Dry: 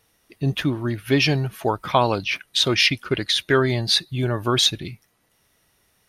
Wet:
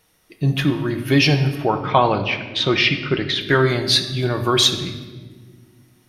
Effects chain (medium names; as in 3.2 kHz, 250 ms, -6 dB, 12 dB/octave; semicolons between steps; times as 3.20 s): 1.55–3.41 s: low-pass 3.2 kHz 12 dB/octave; reverberation RT60 1.5 s, pre-delay 5 ms, DRR 5 dB; trim +2 dB